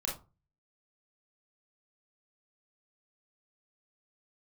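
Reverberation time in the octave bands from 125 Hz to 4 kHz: 0.55 s, 0.40 s, 0.30 s, 0.30 s, 0.20 s, 0.15 s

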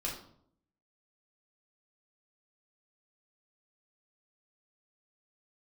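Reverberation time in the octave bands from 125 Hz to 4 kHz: 0.85 s, 0.85 s, 0.70 s, 0.60 s, 0.45 s, 0.45 s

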